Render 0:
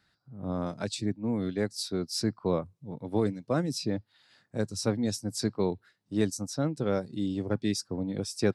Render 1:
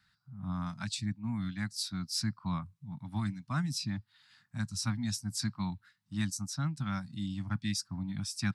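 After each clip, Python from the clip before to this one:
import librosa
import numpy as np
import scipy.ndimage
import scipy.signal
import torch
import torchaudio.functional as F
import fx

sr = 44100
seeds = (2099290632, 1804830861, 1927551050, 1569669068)

y = scipy.signal.sosfilt(scipy.signal.cheby1(2, 1.0, [180.0, 1100.0], 'bandstop', fs=sr, output='sos'), x)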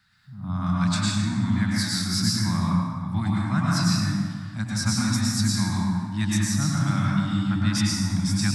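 y = fx.rev_plate(x, sr, seeds[0], rt60_s=1.9, hf_ratio=0.55, predelay_ms=90, drr_db=-5.5)
y = y * 10.0 ** (5.5 / 20.0)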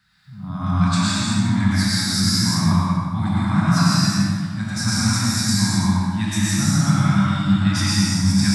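y = fx.rev_gated(x, sr, seeds[1], gate_ms=280, shape='flat', drr_db=-4.5)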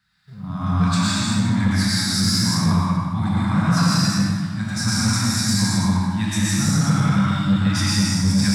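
y = fx.leveller(x, sr, passes=1)
y = y * 10.0 ** (-3.5 / 20.0)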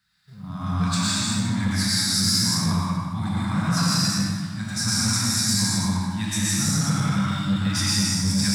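y = fx.high_shelf(x, sr, hz=3500.0, db=8.0)
y = y * 10.0 ** (-5.0 / 20.0)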